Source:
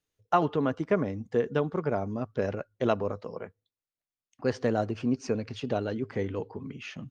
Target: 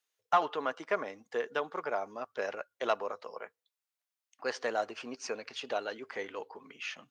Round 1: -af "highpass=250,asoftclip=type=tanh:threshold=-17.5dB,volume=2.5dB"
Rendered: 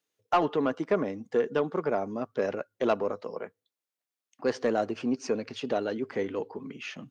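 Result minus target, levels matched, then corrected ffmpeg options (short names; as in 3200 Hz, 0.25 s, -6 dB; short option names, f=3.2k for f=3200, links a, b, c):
250 Hz band +9.5 dB
-af "highpass=780,asoftclip=type=tanh:threshold=-17.5dB,volume=2.5dB"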